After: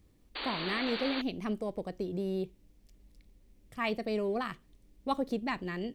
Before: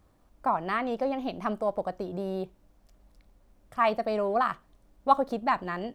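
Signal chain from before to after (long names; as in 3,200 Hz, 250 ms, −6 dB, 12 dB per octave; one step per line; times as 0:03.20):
flat-topped bell 950 Hz −12 dB
sound drawn into the spectrogram noise, 0:00.35–0:01.22, 240–4,700 Hz −38 dBFS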